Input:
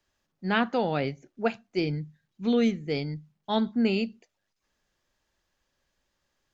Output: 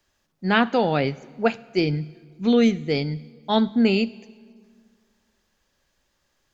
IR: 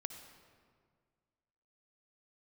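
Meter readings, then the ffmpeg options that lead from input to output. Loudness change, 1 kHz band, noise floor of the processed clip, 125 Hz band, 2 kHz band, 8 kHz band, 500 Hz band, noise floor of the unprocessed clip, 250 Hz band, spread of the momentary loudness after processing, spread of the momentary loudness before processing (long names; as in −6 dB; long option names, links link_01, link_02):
+6.0 dB, +6.0 dB, −72 dBFS, +6.0 dB, +6.0 dB, can't be measured, +6.0 dB, −80 dBFS, +6.0 dB, 11 LU, 11 LU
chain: -filter_complex "[0:a]asplit=2[link_01][link_02];[link_02]highshelf=frequency=3800:gain=10.5[link_03];[1:a]atrim=start_sample=2205,asetrate=40131,aresample=44100[link_04];[link_03][link_04]afir=irnorm=-1:irlink=0,volume=-13dB[link_05];[link_01][link_05]amix=inputs=2:normalize=0,volume=4.5dB"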